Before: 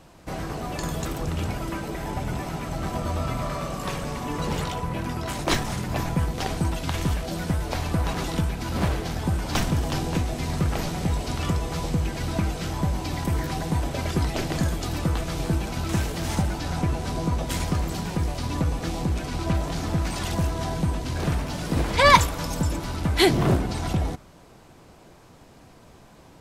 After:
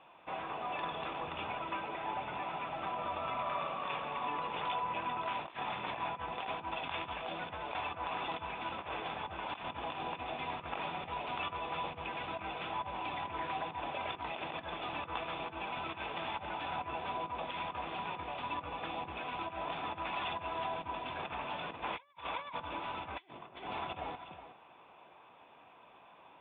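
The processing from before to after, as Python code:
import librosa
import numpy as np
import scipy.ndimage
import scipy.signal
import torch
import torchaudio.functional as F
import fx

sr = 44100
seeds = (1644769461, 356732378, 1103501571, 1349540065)

y = fx.highpass(x, sr, hz=270.0, slope=6)
y = y + 10.0 ** (-12.5 / 20.0) * np.pad(y, (int(368 * sr / 1000.0), 0))[:len(y)]
y = fx.over_compress(y, sr, threshold_db=-31.0, ratio=-0.5)
y = scipy.signal.sosfilt(scipy.signal.cheby1(6, 9, 3600.0, 'lowpass', fs=sr, output='sos'), y)
y = fx.low_shelf(y, sr, hz=470.0, db=-10.0)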